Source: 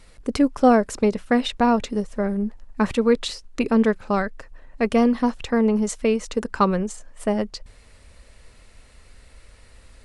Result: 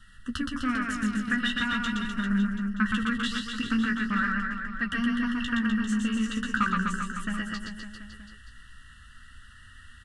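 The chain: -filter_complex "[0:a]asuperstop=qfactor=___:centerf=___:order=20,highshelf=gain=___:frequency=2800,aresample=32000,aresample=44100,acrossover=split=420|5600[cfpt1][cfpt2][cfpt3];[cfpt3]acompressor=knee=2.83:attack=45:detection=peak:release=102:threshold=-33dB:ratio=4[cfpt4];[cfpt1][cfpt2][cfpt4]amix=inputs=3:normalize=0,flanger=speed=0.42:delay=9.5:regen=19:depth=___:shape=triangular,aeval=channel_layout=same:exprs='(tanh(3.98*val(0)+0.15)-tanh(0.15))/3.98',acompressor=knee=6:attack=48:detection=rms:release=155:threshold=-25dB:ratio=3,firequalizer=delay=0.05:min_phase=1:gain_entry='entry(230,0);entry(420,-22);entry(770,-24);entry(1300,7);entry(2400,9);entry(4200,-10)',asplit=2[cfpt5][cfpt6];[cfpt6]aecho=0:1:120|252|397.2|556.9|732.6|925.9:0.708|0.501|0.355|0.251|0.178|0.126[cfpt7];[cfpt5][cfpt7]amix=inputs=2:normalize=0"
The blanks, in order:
3.1, 2300, 7, 9.9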